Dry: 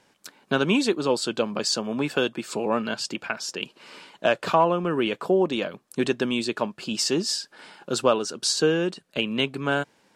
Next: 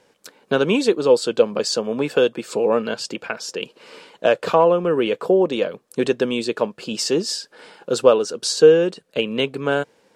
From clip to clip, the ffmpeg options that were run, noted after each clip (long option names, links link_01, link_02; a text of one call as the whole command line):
ffmpeg -i in.wav -af "equalizer=frequency=480:width_type=o:width=0.43:gain=11.5,volume=1dB" out.wav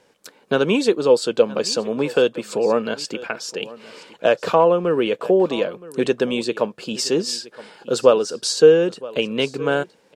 ffmpeg -i in.wav -af "aecho=1:1:970:0.112" out.wav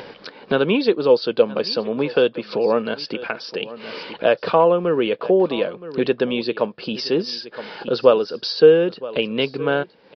ffmpeg -i in.wav -af "acompressor=mode=upward:threshold=-21dB:ratio=2.5,aresample=11025,aresample=44100" out.wav